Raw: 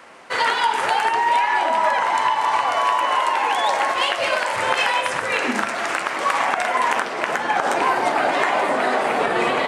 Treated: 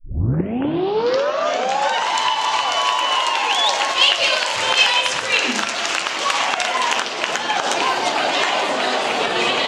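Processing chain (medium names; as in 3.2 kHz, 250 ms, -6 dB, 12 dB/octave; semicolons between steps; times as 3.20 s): tape start-up on the opening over 2.09 s; high-order bell 4.4 kHz +12 dB; trim -1 dB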